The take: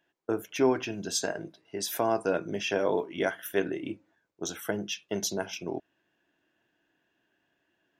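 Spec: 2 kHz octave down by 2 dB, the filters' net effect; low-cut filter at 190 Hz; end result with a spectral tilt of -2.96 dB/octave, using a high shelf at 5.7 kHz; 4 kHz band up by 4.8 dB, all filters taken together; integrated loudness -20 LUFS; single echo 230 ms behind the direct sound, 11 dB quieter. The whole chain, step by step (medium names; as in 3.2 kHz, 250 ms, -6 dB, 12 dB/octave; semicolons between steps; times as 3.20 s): high-pass 190 Hz; peaking EQ 2 kHz -5.5 dB; peaking EQ 4 kHz +6.5 dB; treble shelf 5.7 kHz +3.5 dB; delay 230 ms -11 dB; trim +10 dB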